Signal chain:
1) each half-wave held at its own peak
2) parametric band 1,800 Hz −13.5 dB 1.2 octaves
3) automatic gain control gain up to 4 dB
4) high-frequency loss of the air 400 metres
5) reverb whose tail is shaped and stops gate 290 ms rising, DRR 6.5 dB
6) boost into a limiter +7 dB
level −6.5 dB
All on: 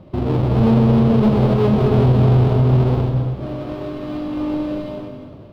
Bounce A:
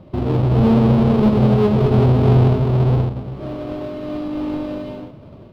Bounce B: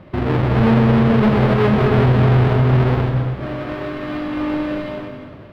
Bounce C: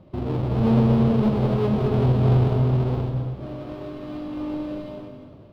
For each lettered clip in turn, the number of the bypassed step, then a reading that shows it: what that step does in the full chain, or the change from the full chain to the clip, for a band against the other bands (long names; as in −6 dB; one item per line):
5, change in momentary loudness spread +1 LU
2, 2 kHz band +10.5 dB
6, change in crest factor +4.0 dB